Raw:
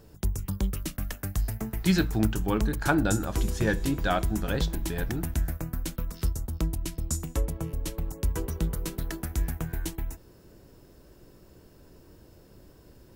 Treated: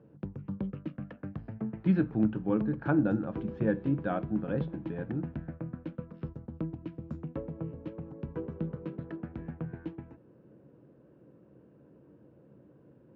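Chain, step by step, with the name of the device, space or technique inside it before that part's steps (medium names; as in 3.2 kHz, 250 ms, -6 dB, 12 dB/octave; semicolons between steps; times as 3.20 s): bass cabinet (cabinet simulation 84–2300 Hz, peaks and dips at 92 Hz -5 dB, 140 Hz +10 dB, 210 Hz +8 dB, 300 Hz +8 dB, 510 Hz +9 dB, 2 kHz -6 dB); trim -8.5 dB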